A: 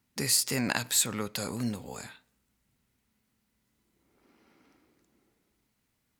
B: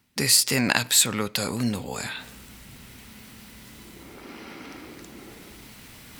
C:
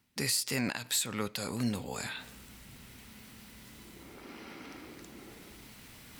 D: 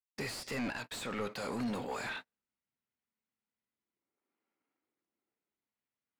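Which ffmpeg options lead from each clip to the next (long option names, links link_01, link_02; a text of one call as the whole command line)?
ffmpeg -i in.wav -af "equalizer=frequency=3000:width_type=o:width=1.5:gain=4,bandreject=frequency=6700:width=27,areverse,acompressor=mode=upward:threshold=-32dB:ratio=2.5,areverse,volume=6dB" out.wav
ffmpeg -i in.wav -af "alimiter=limit=-13.5dB:level=0:latency=1:release=254,volume=-6dB" out.wav
ffmpeg -i in.wav -filter_complex "[0:a]agate=range=-48dB:threshold=-40dB:ratio=16:detection=peak,asplit=2[link_01][link_02];[link_02]highpass=frequency=720:poles=1,volume=23dB,asoftclip=type=tanh:threshold=-19dB[link_03];[link_01][link_03]amix=inputs=2:normalize=0,lowpass=frequency=1000:poles=1,volume=-6dB,asoftclip=type=tanh:threshold=-25.5dB,volume=-4dB" out.wav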